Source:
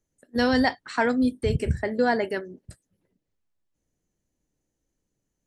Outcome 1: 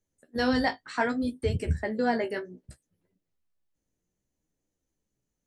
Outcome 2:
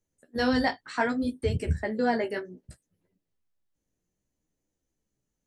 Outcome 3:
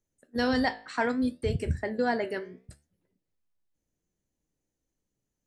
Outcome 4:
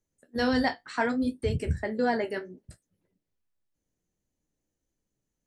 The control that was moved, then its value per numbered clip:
flanger, regen: +19, −3, +77, −41%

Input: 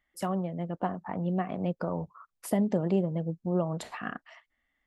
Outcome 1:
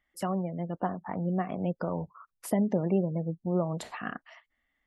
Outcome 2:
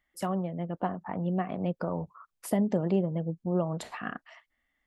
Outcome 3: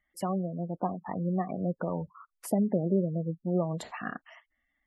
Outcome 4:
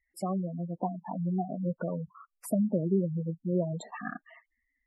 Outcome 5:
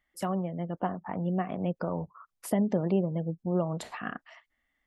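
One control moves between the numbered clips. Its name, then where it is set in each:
gate on every frequency bin, under each frame's peak: −35, −60, −20, −10, −45 decibels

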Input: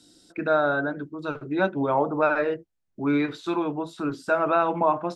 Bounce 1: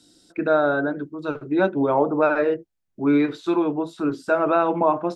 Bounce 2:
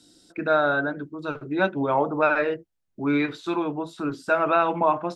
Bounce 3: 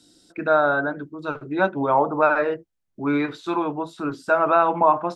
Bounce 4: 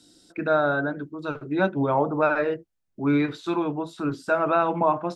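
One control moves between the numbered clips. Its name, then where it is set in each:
dynamic equaliser, frequency: 370, 2,700, 1,000, 120 Hertz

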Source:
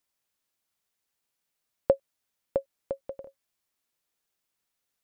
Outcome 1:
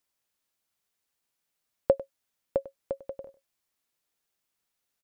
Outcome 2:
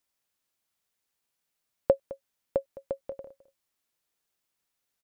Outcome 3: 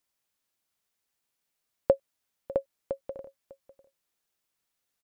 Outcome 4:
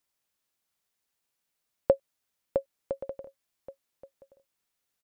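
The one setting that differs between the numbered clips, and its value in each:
single-tap delay, delay time: 98, 211, 600, 1,126 milliseconds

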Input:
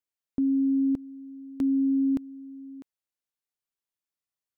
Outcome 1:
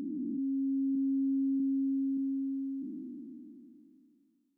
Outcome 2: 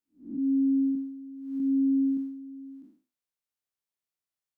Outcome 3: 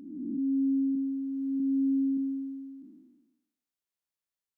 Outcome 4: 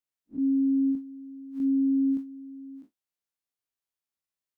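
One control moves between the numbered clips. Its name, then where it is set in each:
spectrum smeared in time, width: 1,790, 227, 621, 83 milliseconds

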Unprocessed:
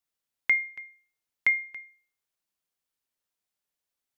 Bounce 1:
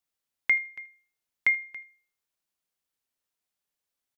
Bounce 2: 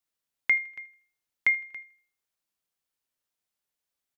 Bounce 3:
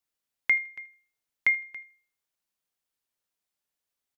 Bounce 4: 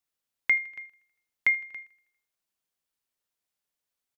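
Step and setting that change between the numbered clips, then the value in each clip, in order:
repeating echo, feedback: 17, 40, 27, 60%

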